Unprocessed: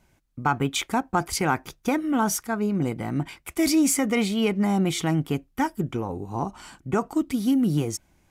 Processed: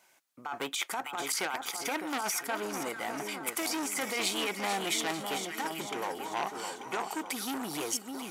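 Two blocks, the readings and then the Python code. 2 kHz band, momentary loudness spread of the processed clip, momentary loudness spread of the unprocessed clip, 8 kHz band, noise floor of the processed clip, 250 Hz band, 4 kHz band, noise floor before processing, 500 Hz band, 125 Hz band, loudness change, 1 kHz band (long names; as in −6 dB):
−2.5 dB, 6 LU, 9 LU, −3.5 dB, −54 dBFS, −16.0 dB, −1.0 dB, −65 dBFS, −8.5 dB, −23.5 dB, −8.0 dB, −6.0 dB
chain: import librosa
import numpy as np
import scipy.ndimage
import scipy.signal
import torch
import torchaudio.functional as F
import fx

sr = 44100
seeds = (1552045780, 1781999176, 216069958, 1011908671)

y = scipy.signal.sosfilt(scipy.signal.butter(2, 640.0, 'highpass', fs=sr, output='sos'), x)
y = fx.high_shelf(y, sr, hz=5000.0, db=4.0)
y = fx.over_compress(y, sr, threshold_db=-30.0, ratio=-1.0)
y = fx.echo_split(y, sr, split_hz=1400.0, low_ms=605, high_ms=444, feedback_pct=52, wet_db=-7.0)
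y = fx.transformer_sat(y, sr, knee_hz=3000.0)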